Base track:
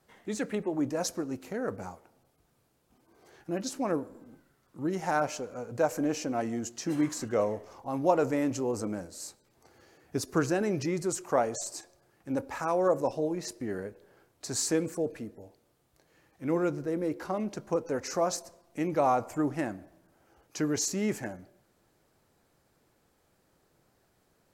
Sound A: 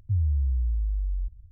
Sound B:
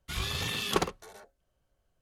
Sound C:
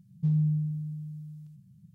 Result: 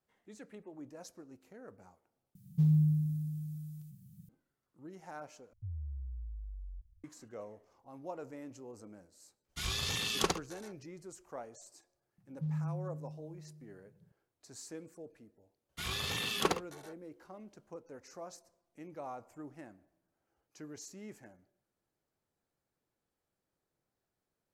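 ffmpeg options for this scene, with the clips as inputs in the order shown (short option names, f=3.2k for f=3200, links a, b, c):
-filter_complex "[3:a]asplit=2[a][b];[2:a]asplit=2[c][d];[0:a]volume=-18.5dB[e];[a]aemphasis=mode=production:type=50fm[f];[c]equalizer=f=6k:w=0.91:g=7[g];[d]highpass=f=130:p=1[h];[e]asplit=3[i][j][k];[i]atrim=end=2.354[l];[f]atrim=end=1.94,asetpts=PTS-STARTPTS,volume=-0.5dB[m];[j]atrim=start=4.286:end=5.534[n];[1:a]atrim=end=1.51,asetpts=PTS-STARTPTS,volume=-17dB[o];[k]atrim=start=7.036[p];[g]atrim=end=2.01,asetpts=PTS-STARTPTS,volume=-4.5dB,afade=t=in:d=0.02,afade=t=out:st=1.99:d=0.02,adelay=9480[q];[b]atrim=end=1.94,asetpts=PTS-STARTPTS,volume=-10.5dB,afade=t=in:d=0.004:c=hsin,afade=t=out:st=1.936:d=0.004:c=hsin,adelay=12180[r];[h]atrim=end=2.01,asetpts=PTS-STARTPTS,volume=-2.5dB,afade=t=in:d=0.004:c=hsin,afade=t=out:st=2.006:d=0.004:c=hsin,adelay=15690[s];[l][m]acrossfade=d=0.004:c1=hsin:c2=hsin[t];[t][n]acrossfade=d=0.004:c1=hsin:c2=hsin[u];[u][o]acrossfade=d=0.004:c1=hsin:c2=hsin[v];[v][p]acrossfade=d=0.004:c1=hsin:c2=hsin[w];[w][q][r][s]amix=inputs=4:normalize=0"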